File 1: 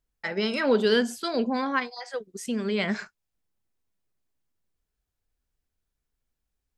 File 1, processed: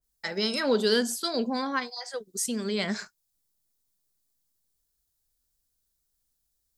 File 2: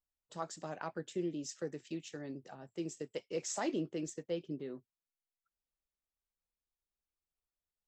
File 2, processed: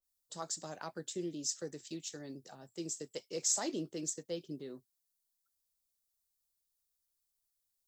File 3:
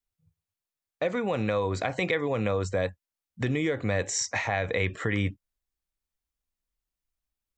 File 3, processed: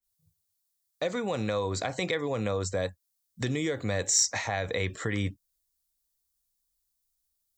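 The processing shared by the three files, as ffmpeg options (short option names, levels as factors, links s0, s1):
-filter_complex "[0:a]acrossover=split=960[s0][s1];[s1]aexciter=amount=3.4:drive=6.7:freq=3700[s2];[s0][s2]amix=inputs=2:normalize=0,adynamicequalizer=threshold=0.00891:dfrequency=2500:dqfactor=0.7:tfrequency=2500:tqfactor=0.7:attack=5:release=100:ratio=0.375:range=2:mode=cutabove:tftype=highshelf,volume=0.75"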